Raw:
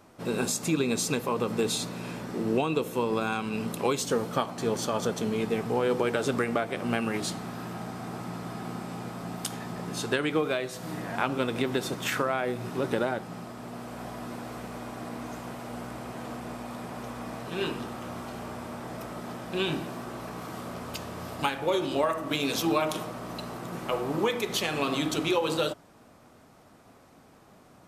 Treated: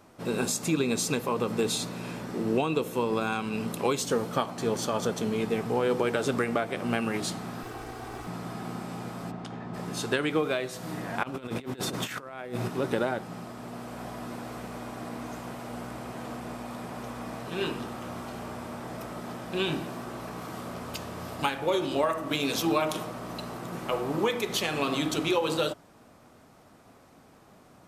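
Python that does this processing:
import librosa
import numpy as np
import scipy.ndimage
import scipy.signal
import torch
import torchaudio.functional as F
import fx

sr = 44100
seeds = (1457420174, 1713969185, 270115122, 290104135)

y = fx.lower_of_two(x, sr, delay_ms=2.6, at=(7.63, 8.27))
y = fx.spacing_loss(y, sr, db_at_10k=27, at=(9.3, 9.73), fade=0.02)
y = fx.over_compress(y, sr, threshold_db=-34.0, ratio=-0.5, at=(11.23, 12.68))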